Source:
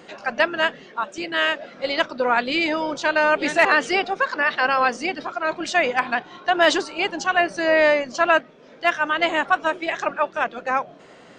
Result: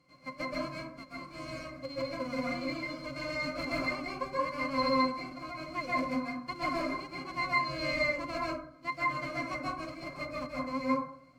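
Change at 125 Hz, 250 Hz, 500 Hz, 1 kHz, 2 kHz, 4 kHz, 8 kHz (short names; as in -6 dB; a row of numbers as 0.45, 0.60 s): +2.5, -7.0, -14.5, -12.5, -15.5, -14.0, -17.0 dB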